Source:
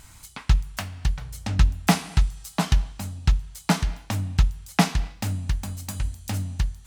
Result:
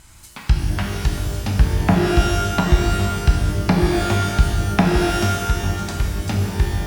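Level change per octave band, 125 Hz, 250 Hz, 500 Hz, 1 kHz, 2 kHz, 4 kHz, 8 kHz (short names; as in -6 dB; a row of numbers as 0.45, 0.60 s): +6.5, +8.0, +13.0, +8.0, +7.0, +5.0, +3.5 dB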